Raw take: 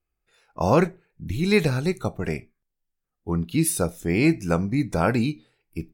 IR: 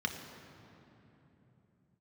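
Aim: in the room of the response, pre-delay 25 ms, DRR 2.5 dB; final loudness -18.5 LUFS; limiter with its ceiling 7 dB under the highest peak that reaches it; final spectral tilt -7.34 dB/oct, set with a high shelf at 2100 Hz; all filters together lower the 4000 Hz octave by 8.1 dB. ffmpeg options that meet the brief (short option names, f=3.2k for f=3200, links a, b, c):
-filter_complex "[0:a]highshelf=f=2.1k:g=-7,equalizer=f=4k:t=o:g=-3,alimiter=limit=-14.5dB:level=0:latency=1,asplit=2[a][b];[1:a]atrim=start_sample=2205,adelay=25[c];[b][c]afir=irnorm=-1:irlink=0,volume=-7.5dB[d];[a][d]amix=inputs=2:normalize=0,volume=6.5dB"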